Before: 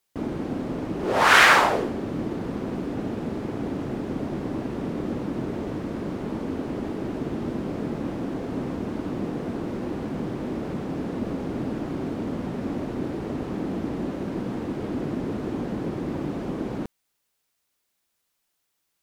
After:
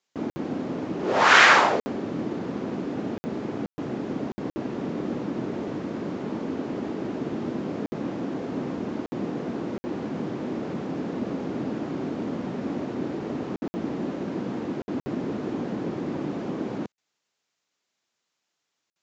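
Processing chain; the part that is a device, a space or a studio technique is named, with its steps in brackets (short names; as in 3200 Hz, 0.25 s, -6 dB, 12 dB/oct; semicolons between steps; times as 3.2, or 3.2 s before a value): call with lost packets (HPF 140 Hz 12 dB/oct; downsampling 16000 Hz; packet loss packets of 60 ms random)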